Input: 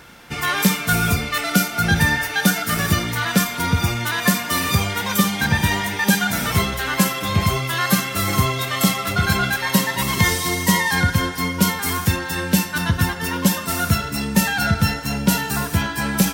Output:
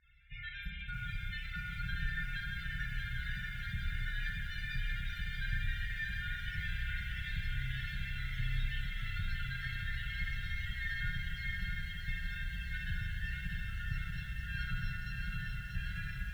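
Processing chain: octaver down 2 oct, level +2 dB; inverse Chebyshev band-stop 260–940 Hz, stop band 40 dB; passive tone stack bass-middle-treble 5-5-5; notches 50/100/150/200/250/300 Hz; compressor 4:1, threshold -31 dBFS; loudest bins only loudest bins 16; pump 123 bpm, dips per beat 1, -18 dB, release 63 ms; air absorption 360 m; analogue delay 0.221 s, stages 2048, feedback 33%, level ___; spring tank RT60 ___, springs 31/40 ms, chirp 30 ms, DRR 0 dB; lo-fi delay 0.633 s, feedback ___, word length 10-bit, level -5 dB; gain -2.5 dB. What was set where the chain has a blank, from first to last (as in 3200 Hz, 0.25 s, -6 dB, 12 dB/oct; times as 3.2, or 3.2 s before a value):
-8 dB, 2.2 s, 80%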